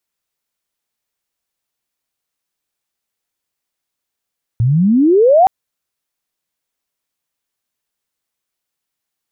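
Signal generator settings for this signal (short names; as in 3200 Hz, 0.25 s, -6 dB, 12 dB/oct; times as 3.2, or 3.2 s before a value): chirp logarithmic 110 Hz -> 790 Hz -10 dBFS -> -5 dBFS 0.87 s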